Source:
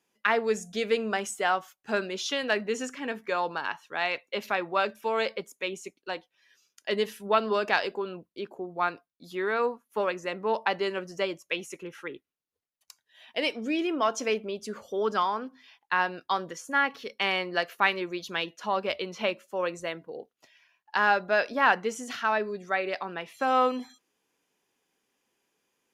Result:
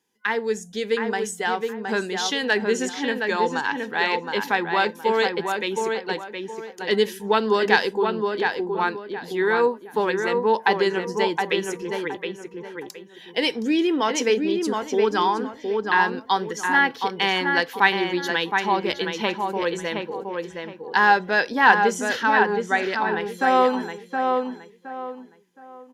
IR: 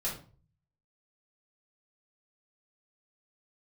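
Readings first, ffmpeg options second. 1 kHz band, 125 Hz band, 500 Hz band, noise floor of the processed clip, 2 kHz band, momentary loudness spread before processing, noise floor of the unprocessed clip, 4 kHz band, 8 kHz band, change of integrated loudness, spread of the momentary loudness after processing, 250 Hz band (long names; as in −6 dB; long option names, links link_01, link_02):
+7.0 dB, +9.0 dB, +6.5 dB, −46 dBFS, +7.5 dB, 12 LU, −84 dBFS, +7.0 dB, +7.0 dB, +6.5 dB, 12 LU, +9.0 dB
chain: -filter_complex "[0:a]superequalizer=8b=0.316:10b=0.447:12b=0.562,dynaudnorm=framelen=130:gausssize=31:maxgain=6dB,asplit=2[link_01][link_02];[link_02]adelay=718,lowpass=frequency=2400:poles=1,volume=-4dB,asplit=2[link_03][link_04];[link_04]adelay=718,lowpass=frequency=2400:poles=1,volume=0.31,asplit=2[link_05][link_06];[link_06]adelay=718,lowpass=frequency=2400:poles=1,volume=0.31,asplit=2[link_07][link_08];[link_08]adelay=718,lowpass=frequency=2400:poles=1,volume=0.31[link_09];[link_03][link_05][link_07][link_09]amix=inputs=4:normalize=0[link_10];[link_01][link_10]amix=inputs=2:normalize=0,volume=2dB"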